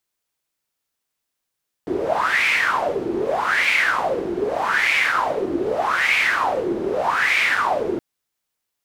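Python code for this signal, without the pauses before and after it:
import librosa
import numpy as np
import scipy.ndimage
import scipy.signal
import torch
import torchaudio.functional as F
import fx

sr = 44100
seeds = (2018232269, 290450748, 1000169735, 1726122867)

y = fx.wind(sr, seeds[0], length_s=6.12, low_hz=340.0, high_hz=2300.0, q=7.3, gusts=5, swing_db=5.5)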